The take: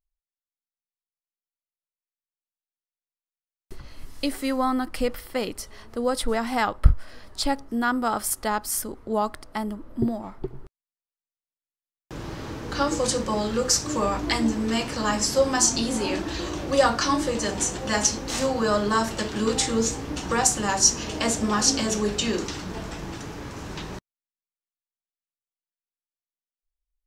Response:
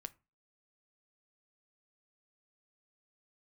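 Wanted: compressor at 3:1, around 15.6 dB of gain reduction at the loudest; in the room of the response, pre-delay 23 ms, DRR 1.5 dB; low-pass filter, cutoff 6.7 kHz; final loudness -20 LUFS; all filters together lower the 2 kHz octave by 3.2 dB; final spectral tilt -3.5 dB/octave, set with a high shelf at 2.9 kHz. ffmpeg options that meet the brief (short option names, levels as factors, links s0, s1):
-filter_complex "[0:a]lowpass=6700,equalizer=f=2000:t=o:g=-5.5,highshelf=f=2900:g=3.5,acompressor=threshold=0.0282:ratio=3,asplit=2[s0][s1];[1:a]atrim=start_sample=2205,adelay=23[s2];[s1][s2]afir=irnorm=-1:irlink=0,volume=1.41[s3];[s0][s3]amix=inputs=2:normalize=0,volume=3.55"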